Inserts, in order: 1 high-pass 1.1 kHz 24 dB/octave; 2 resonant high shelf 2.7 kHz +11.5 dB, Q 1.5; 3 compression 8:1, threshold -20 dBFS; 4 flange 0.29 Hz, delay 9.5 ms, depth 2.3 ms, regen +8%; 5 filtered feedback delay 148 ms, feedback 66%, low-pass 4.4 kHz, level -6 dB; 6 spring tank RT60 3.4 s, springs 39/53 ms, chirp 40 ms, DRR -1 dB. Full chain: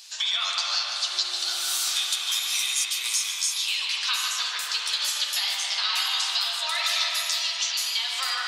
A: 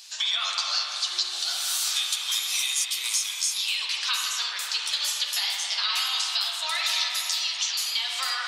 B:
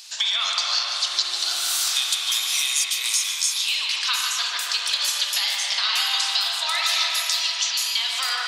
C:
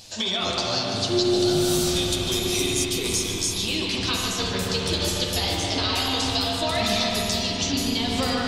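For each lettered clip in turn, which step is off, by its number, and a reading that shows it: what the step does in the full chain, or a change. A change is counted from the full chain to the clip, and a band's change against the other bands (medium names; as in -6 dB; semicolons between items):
5, echo-to-direct 3.5 dB to 1.0 dB; 4, loudness change +3.0 LU; 1, crest factor change -2.5 dB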